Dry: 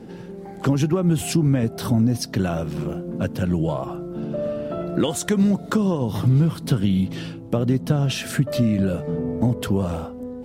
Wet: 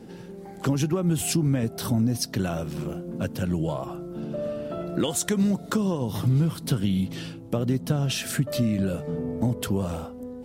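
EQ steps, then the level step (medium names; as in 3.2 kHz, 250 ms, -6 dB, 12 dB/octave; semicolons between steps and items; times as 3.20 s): treble shelf 4.2 kHz +7.5 dB; -4.5 dB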